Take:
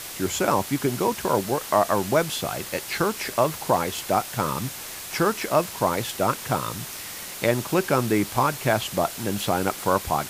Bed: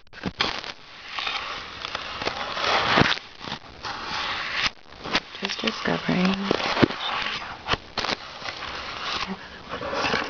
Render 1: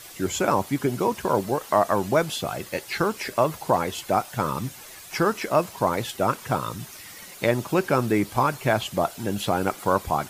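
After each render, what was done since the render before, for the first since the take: denoiser 10 dB, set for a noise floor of -37 dBFS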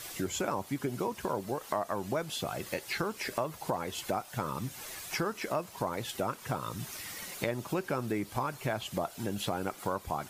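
compressor 3:1, threshold -33 dBFS, peak gain reduction 13.5 dB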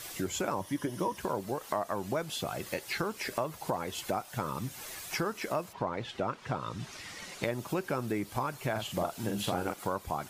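0.6–1.17 ripple EQ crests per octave 1.2, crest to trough 9 dB; 5.72–7.42 LPF 3000 Hz -> 7400 Hz; 8.71–9.74 doubler 45 ms -4.5 dB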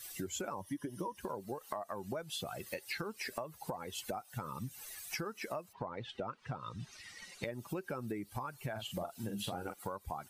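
per-bin expansion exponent 1.5; compressor, threshold -36 dBFS, peak gain reduction 7.5 dB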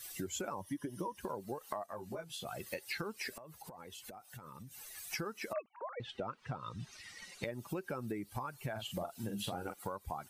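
1.86–2.45 detuned doubles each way 16 cents; 3.36–4.95 compressor 10:1, threshold -46 dBFS; 5.53–6 sine-wave speech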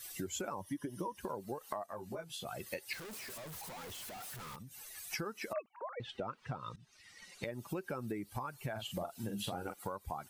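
2.93–4.56 infinite clipping; 6.76–7.56 fade in, from -20.5 dB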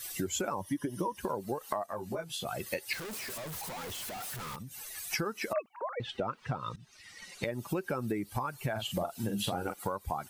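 gain +6.5 dB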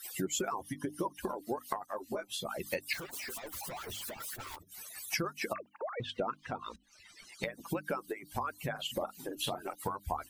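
median-filter separation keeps percussive; notches 50/100/150/200/250/300 Hz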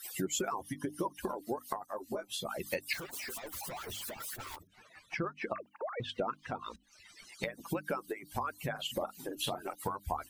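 1.46–2.24 dynamic EQ 2500 Hz, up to -7 dB, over -55 dBFS, Q 0.94; 4.67–5.59 LPF 2200 Hz

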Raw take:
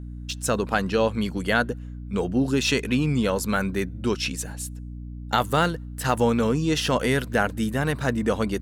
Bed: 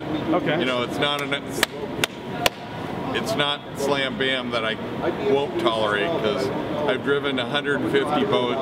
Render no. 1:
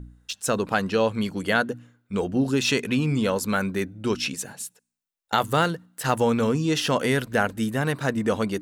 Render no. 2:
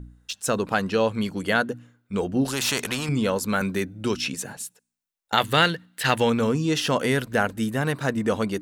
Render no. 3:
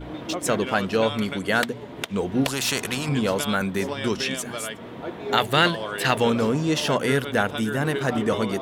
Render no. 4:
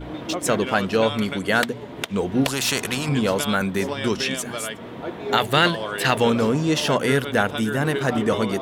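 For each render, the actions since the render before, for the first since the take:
de-hum 60 Hz, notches 5
2.45–3.09 spectral compressor 2:1; 3.61–4.57 three-band squash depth 40%; 5.37–6.3 band shelf 2700 Hz +9.5 dB
add bed -9 dB
gain +2 dB; limiter -3 dBFS, peak gain reduction 2.5 dB

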